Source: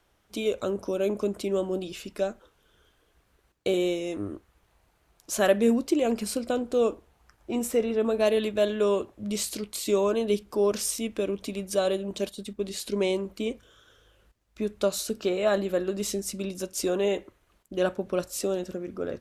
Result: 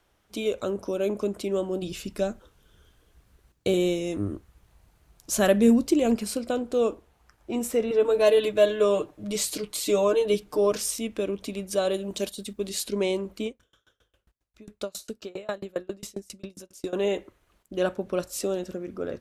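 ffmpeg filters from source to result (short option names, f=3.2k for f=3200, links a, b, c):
-filter_complex "[0:a]asettb=1/sr,asplit=3[a][b][c];[a]atrim=end=1.824[d];[b]atrim=start=1.82:end=6.16,asetpts=PTS-STARTPTS,afade=t=in:d=0.004:c=qsin,afade=t=out:st=4.336:d=0.004:c=qsin,bass=f=250:g=9,treble=f=4k:g=4[e];[c]atrim=start=6.156[f];[d][e]acrossfade=d=0.004:c1=hsin:c2=qsin[g];[g][f]acrossfade=d=0.004:c1=qsin:c2=hsin,asettb=1/sr,asplit=3[h][i][j];[h]atrim=end=7.904[k];[i]atrim=start=7.9:end=10.77,asetpts=PTS-STARTPTS,afade=t=in:d=0.004:c=qsin,afade=t=out:st=2.866:d=0.004:c=qsin,aecho=1:1:6.6:0.92,atrim=end_sample=126567[l];[j]atrim=start=10.766[m];[k][l]acrossfade=d=0.004:c1=hsin:c2=qsin[n];[n][m]acrossfade=d=0.004:c1=qsin:c2=hsin,asettb=1/sr,asplit=3[o][p][q];[o]atrim=end=11.944[r];[p]atrim=start=11.94:end=12.84,asetpts=PTS-STARTPTS,afade=t=in:d=0.004:c=qsin,afade=t=out:st=0.896:d=0.004:c=qsin,highshelf=f=4.3k:g=7.5[s];[q]atrim=start=12.836[t];[r][s]acrossfade=d=0.004:c1=hsin:c2=qsin[u];[u][t]acrossfade=d=0.004:c1=qsin:c2=hsin,asettb=1/sr,asplit=3[v][w][x];[v]atrim=end=13.464[y];[w]atrim=start=13.46:end=16.93,asetpts=PTS-STARTPTS,afade=t=in:d=0.004:c=qsin,afade=t=out:st=3.466:d=0.004:c=qsin,aeval=exprs='val(0)*pow(10,-31*if(lt(mod(7.4*n/s,1),2*abs(7.4)/1000),1-mod(7.4*n/s,1)/(2*abs(7.4)/1000),(mod(7.4*n/s,1)-2*abs(7.4)/1000)/(1-2*abs(7.4)/1000))/20)':c=same[z];[x]atrim=start=16.926[aa];[y][z]acrossfade=d=0.004:c1=hsin:c2=qsin[ab];[ab][aa]acrossfade=d=0.004:c1=qsin:c2=hsin"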